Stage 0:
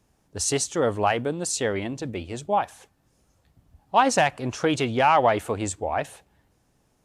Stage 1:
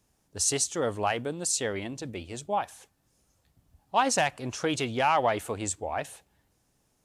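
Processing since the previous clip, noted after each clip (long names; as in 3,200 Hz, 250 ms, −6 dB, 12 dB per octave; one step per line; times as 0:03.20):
high-shelf EQ 3,500 Hz +7.5 dB
level −6 dB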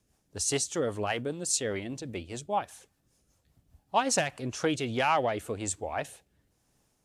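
rotating-speaker cabinet horn 5 Hz, later 1.1 Hz, at 0:04.19
level +1 dB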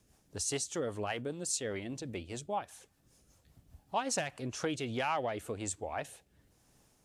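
downward compressor 1.5 to 1, threshold −54 dBFS, peak gain reduction 12 dB
level +4 dB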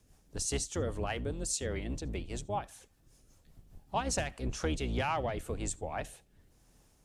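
sub-octave generator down 2 octaves, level +4 dB
convolution reverb, pre-delay 45 ms, DRR 25.5 dB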